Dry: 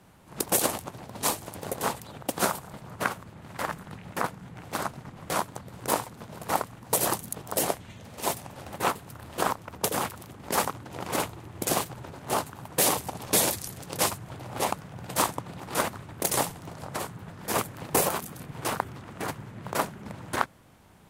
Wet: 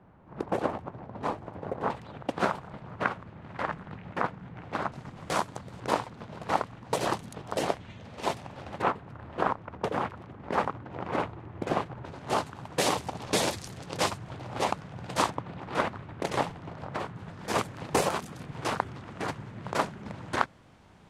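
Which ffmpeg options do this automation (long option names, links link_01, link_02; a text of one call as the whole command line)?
ffmpeg -i in.wav -af "asetnsamples=nb_out_samples=441:pad=0,asendcmd='1.9 lowpass f 2700;4.92 lowpass f 7000;5.8 lowpass f 4100;8.82 lowpass f 2000;12.05 lowpass f 5400;15.3 lowpass f 3000;17.16 lowpass f 5900',lowpass=1400" out.wav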